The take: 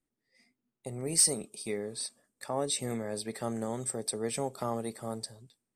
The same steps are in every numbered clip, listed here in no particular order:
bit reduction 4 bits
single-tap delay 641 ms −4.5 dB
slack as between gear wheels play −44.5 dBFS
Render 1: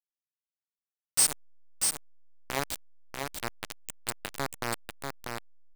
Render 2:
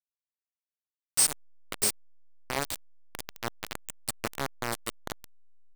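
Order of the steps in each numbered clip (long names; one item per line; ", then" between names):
bit reduction, then single-tap delay, then slack as between gear wheels
single-tap delay, then bit reduction, then slack as between gear wheels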